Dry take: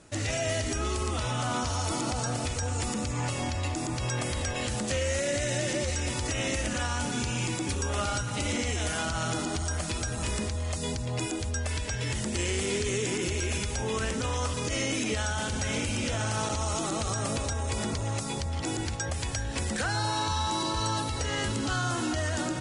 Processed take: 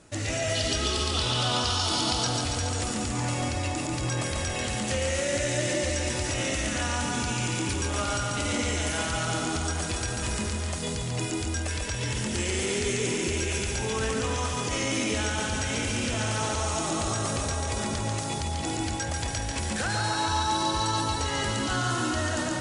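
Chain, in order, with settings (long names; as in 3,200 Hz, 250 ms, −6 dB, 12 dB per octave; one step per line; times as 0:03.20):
0:00.55–0:02.27: flat-topped bell 3,900 Hz +10.5 dB 1 octave
on a send: feedback echo with a high-pass in the loop 141 ms, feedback 69%, high-pass 190 Hz, level −4 dB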